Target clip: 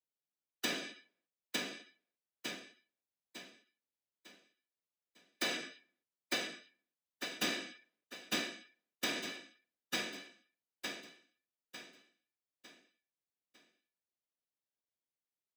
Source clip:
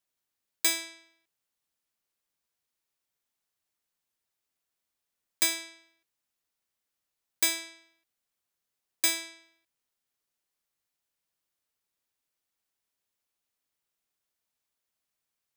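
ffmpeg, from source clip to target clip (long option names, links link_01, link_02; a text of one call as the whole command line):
ffmpeg -i in.wav -filter_complex "[0:a]highshelf=frequency=2900:gain=9,acrossover=split=250|990|6300[link_01][link_02][link_03][link_04];[link_04]acompressor=threshold=-27dB:ratio=16[link_05];[link_01][link_02][link_03][link_05]amix=inputs=4:normalize=0,afftfilt=real='hypot(re,im)*cos(2*PI*random(0))':imag='hypot(re,im)*sin(2*PI*random(1))':win_size=512:overlap=0.75,afftdn=noise_reduction=17:noise_floor=-53,aecho=1:1:902|1804|2706|3608|4510:0.562|0.219|0.0855|0.0334|0.013,asplit=2[link_06][link_07];[link_07]asetrate=33038,aresample=44100,atempo=1.33484,volume=-2dB[link_08];[link_06][link_08]amix=inputs=2:normalize=0,firequalizer=gain_entry='entry(530,0);entry(1100,-9);entry(8800,-21)':delay=0.05:min_phase=1,alimiter=level_in=9.5dB:limit=-24dB:level=0:latency=1:release=304,volume=-9.5dB,highpass=110,volume=11dB" out.wav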